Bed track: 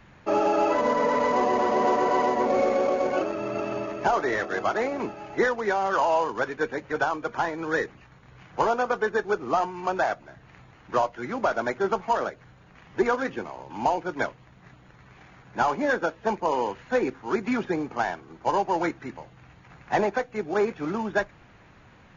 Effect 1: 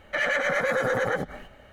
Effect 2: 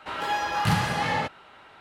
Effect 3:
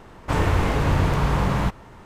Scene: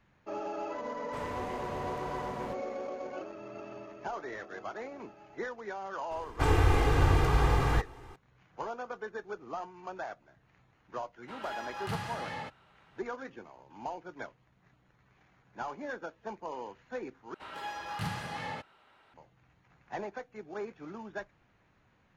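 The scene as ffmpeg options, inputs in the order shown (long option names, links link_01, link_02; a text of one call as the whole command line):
ffmpeg -i bed.wav -i cue0.wav -i cue1.wav -i cue2.wav -filter_complex "[3:a]asplit=2[link_01][link_02];[2:a]asplit=2[link_03][link_04];[0:a]volume=-15dB[link_05];[link_01]lowshelf=frequency=120:gain=-12[link_06];[link_02]aecho=1:1:2.5:0.73[link_07];[link_05]asplit=2[link_08][link_09];[link_08]atrim=end=17.344[link_10];[link_04]atrim=end=1.8,asetpts=PTS-STARTPTS,volume=-12.5dB[link_11];[link_09]atrim=start=19.136[link_12];[link_06]atrim=end=2.05,asetpts=PTS-STARTPTS,volume=-18dB,afade=type=in:duration=0.004:curve=hsin,afade=type=out:start_time=2.046:duration=0.004:curve=hsin,adelay=840[link_13];[link_07]atrim=end=2.05,asetpts=PTS-STARTPTS,volume=-6.5dB,afade=type=in:duration=0.004:curve=hsin,afade=type=out:start_time=2.046:duration=0.004:curve=hsin,adelay=6110[link_14];[link_03]atrim=end=1.8,asetpts=PTS-STARTPTS,volume=-13.5dB,afade=type=in:duration=0.004:curve=hsin,afade=type=out:start_time=1.796:duration=0.004:curve=hsin,adelay=494802S[link_15];[link_10][link_11]acrossfade=duration=0.004:curve1=hsin:curve2=hsin[link_16];[link_16][link_12]acrossfade=duration=0.004:curve1=hsin:curve2=hsin[link_17];[link_17][link_13][link_14][link_15]amix=inputs=4:normalize=0" out.wav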